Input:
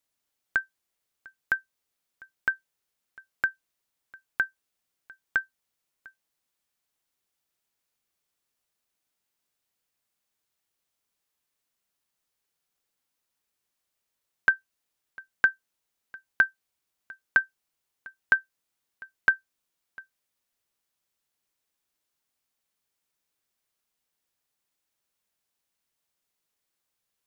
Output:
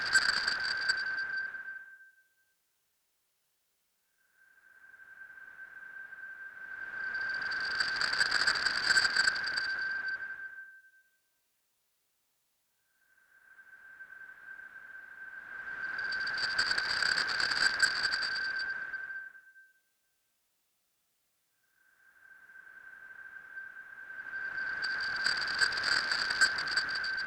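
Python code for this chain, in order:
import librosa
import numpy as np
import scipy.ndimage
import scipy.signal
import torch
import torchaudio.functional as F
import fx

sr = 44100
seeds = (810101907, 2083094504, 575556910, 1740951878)

y = fx.paulstretch(x, sr, seeds[0], factor=9.1, window_s=0.5, from_s=2.5)
y = fx.cheby_harmonics(y, sr, harmonics=(7,), levels_db=(-8,), full_scale_db=-17.5)
y = fx.doppler_dist(y, sr, depth_ms=0.13)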